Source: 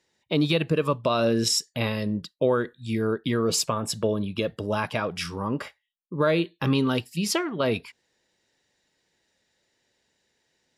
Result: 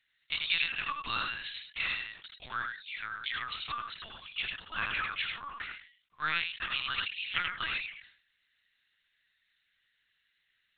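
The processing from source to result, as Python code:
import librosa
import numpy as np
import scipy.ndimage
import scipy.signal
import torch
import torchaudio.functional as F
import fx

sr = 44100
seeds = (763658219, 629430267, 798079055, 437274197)

p1 = fx.block_float(x, sr, bits=7)
p2 = scipy.signal.sosfilt(scipy.signal.butter(4, 1400.0, 'highpass', fs=sr, output='sos'), p1)
p3 = p2 + fx.echo_single(p2, sr, ms=88, db=-4.0, dry=0)
p4 = fx.lpc_vocoder(p3, sr, seeds[0], excitation='pitch_kept', order=8)
y = fx.sustainer(p4, sr, db_per_s=110.0)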